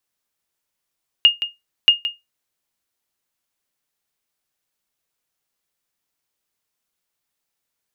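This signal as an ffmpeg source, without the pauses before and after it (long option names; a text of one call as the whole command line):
ffmpeg -f lavfi -i "aevalsrc='0.708*(sin(2*PI*2840*mod(t,0.63))*exp(-6.91*mod(t,0.63)/0.19)+0.251*sin(2*PI*2840*max(mod(t,0.63)-0.17,0))*exp(-6.91*max(mod(t,0.63)-0.17,0)/0.19))':duration=1.26:sample_rate=44100" out.wav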